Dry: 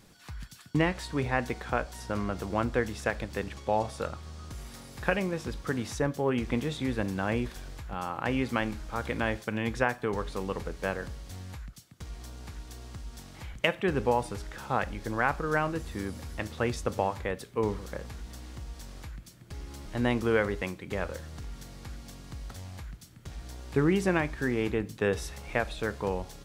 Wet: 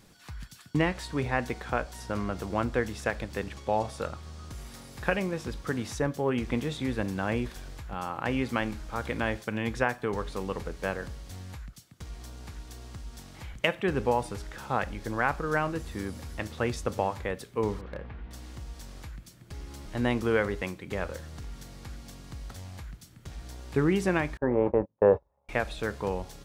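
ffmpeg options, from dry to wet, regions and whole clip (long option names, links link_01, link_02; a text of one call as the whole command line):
ffmpeg -i in.wav -filter_complex "[0:a]asettb=1/sr,asplit=3[link_01][link_02][link_03];[link_01]atrim=end=17.814[link_04];[link_02]atrim=start=17.81:end=18.31,asetpts=PTS-STARTPTS,afade=type=in:duration=0.004:curve=qsin,afade=type=out:start_time=0.496:duration=0.004:curve=qsin,lowpass=frequency=2700:width=0.5412,lowpass=frequency=2700:width=1.3066,asoftclip=type=hard:threshold=-30.5dB[link_05];[link_03]atrim=start=18.306[link_06];[link_04][link_05]acrossfade=duration=0.004:curve1=hsin:curve2=qsin[link_07];[link_07][link_06]acrossfade=duration=0.004:curve1=qsin:curve2=hsin,asettb=1/sr,asplit=3[link_08][link_09][link_10];[link_08]atrim=end=24.374[link_11];[link_09]atrim=start=24.37:end=25.49,asetpts=PTS-STARTPTS,afade=type=in:duration=0.004:curve=qsin,afade=type=out:start_time=1.116:duration=0.004:curve=qsin,agate=range=-35dB:threshold=-33dB:ratio=16:release=100:detection=peak,lowpass=frequency=940:width_type=q:width=4.2,equalizer=frequency=560:width_type=o:width=0.36:gain=13.5[link_12];[link_10]atrim=start=25.486[link_13];[link_11][link_12]acrossfade=duration=0.004:curve1=hsin:curve2=qsin[link_14];[link_14][link_13]acrossfade=duration=0.004:curve1=qsin:curve2=hsin" out.wav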